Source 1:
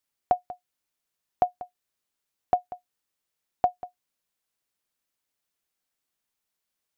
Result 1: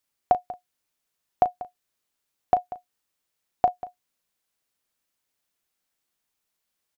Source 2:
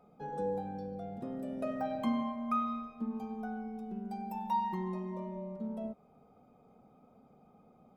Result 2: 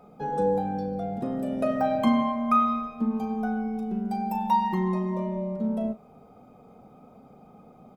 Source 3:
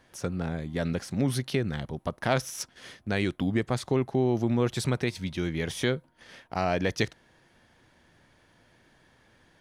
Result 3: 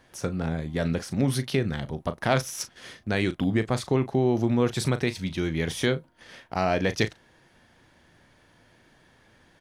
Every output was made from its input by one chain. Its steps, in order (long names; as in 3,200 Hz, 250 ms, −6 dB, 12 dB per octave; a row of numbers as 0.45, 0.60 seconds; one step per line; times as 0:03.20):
double-tracking delay 37 ms −12.5 dB
loudness normalisation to −27 LKFS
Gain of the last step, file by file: +3.0, +10.5, +2.0 decibels